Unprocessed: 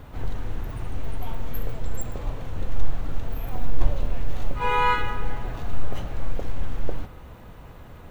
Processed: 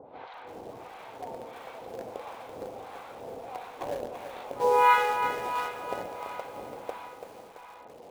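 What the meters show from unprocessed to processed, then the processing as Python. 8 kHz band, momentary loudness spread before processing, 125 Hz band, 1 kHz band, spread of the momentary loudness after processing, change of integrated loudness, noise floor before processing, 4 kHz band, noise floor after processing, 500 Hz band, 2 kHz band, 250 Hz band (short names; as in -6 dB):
n/a, 15 LU, -23.0 dB, +2.5 dB, 22 LU, +1.0 dB, -44 dBFS, -3.0 dB, -49 dBFS, +4.5 dB, -1.0 dB, -8.5 dB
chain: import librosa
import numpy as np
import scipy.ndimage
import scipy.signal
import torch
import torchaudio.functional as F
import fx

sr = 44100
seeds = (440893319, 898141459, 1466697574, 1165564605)

p1 = fx.cabinet(x, sr, low_hz=460.0, low_slope=12, high_hz=3400.0, hz=(500.0, 790.0, 1300.0, 1800.0, 2900.0), db=(5, 5, -4, -8, -7))
p2 = fx.echo_feedback(p1, sr, ms=734, feedback_pct=57, wet_db=-17)
p3 = fx.harmonic_tremolo(p2, sr, hz=1.5, depth_pct=100, crossover_hz=780.0)
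p4 = fx.quant_dither(p3, sr, seeds[0], bits=6, dither='none')
p5 = p3 + F.gain(torch.from_numpy(p4), -11.0).numpy()
p6 = fx.echo_crushed(p5, sr, ms=335, feedback_pct=55, bits=9, wet_db=-8.5)
y = F.gain(torch.from_numpy(p6), 5.0).numpy()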